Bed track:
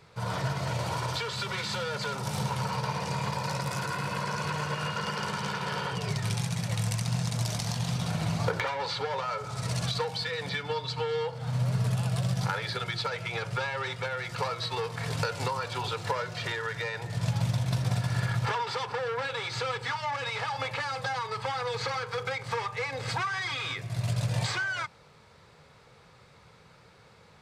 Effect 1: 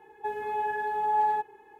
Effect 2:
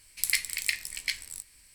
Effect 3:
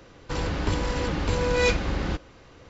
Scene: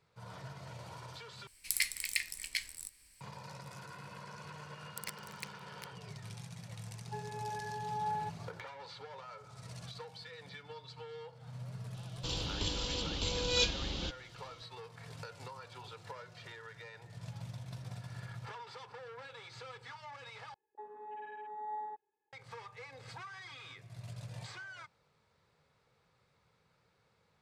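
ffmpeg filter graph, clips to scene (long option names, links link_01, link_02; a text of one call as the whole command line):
ffmpeg -i bed.wav -i cue0.wav -i cue1.wav -i cue2.wav -filter_complex "[2:a]asplit=2[link_01][link_02];[1:a]asplit=2[link_03][link_04];[0:a]volume=-17dB[link_05];[link_02]acrusher=bits=2:mix=0:aa=0.5[link_06];[3:a]highshelf=frequency=2500:width_type=q:width=3:gain=9.5[link_07];[link_04]afwtdn=0.0158[link_08];[link_05]asplit=3[link_09][link_10][link_11];[link_09]atrim=end=1.474[link_12];[link_01]atrim=end=1.74,asetpts=PTS-STARTPTS,volume=-5.5dB[link_13];[link_10]atrim=start=3.206:end=20.544[link_14];[link_08]atrim=end=1.79,asetpts=PTS-STARTPTS,volume=-16dB[link_15];[link_11]atrim=start=22.326[link_16];[link_06]atrim=end=1.74,asetpts=PTS-STARTPTS,volume=-16.5dB,afade=type=in:duration=0.004:curve=hsin,afade=type=out:start_time=1.736:duration=0.004:curve=hsin,adelay=4740[link_17];[link_03]atrim=end=1.79,asetpts=PTS-STARTPTS,volume=-11.5dB,afade=type=in:duration=0.004:curve=hsin,afade=type=out:start_time=1.786:duration=0.004:curve=hsin,adelay=6880[link_18];[link_07]atrim=end=2.69,asetpts=PTS-STARTPTS,volume=-12.5dB,afade=type=in:duration=0.004:curve=hsin,afade=type=out:start_time=2.686:duration=0.004:curve=hsin,adelay=11940[link_19];[link_12][link_13]acrossfade=duration=0.004:curve1=hsin:curve2=hsin[link_20];[link_20][link_14]acrossfade=duration=0.004:curve1=hsin:curve2=hsin[link_21];[link_21][link_15]acrossfade=duration=0.004:curve1=hsin:curve2=hsin[link_22];[link_22][link_16]acrossfade=duration=0.004:curve1=hsin:curve2=hsin[link_23];[link_23][link_17][link_18][link_19]amix=inputs=4:normalize=0" out.wav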